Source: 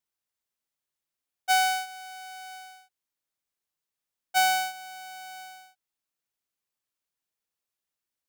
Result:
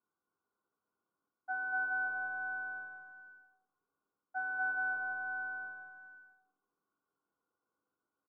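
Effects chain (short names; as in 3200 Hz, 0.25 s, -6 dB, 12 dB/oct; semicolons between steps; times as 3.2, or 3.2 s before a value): reverse; compressor 16:1, threshold -35 dBFS, peak gain reduction 17 dB; reverse; rippled Chebyshev low-pass 1500 Hz, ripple 6 dB; bouncing-ball echo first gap 0.24 s, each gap 0.75×, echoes 5; reverb RT60 0.50 s, pre-delay 3 ms, DRR 3.5 dB; gain +7 dB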